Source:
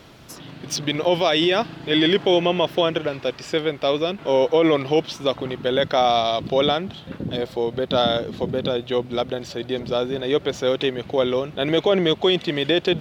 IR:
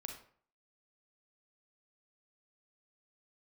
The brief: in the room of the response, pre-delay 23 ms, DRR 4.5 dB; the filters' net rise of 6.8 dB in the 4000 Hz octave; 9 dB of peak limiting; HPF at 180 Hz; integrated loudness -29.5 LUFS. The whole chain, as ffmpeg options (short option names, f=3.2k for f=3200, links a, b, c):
-filter_complex "[0:a]highpass=180,equalizer=f=4k:t=o:g=8.5,alimiter=limit=-12.5dB:level=0:latency=1,asplit=2[a][b];[1:a]atrim=start_sample=2205,adelay=23[c];[b][c]afir=irnorm=-1:irlink=0,volume=-1.5dB[d];[a][d]amix=inputs=2:normalize=0,volume=-7dB"